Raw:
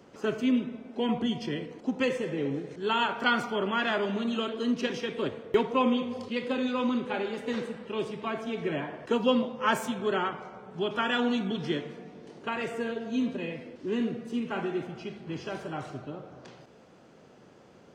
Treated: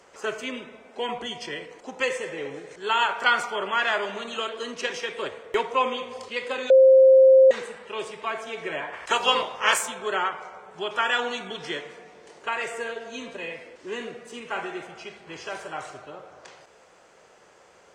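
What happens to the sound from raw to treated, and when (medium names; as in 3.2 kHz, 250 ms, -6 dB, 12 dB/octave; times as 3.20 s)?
6.70–7.51 s: bleep 528 Hz -11.5 dBFS
8.92–9.81 s: spectral peaks clipped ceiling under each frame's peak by 17 dB
whole clip: graphic EQ 125/250/500/1000/2000/8000 Hz -10/-12/+3/+4/+6/+12 dB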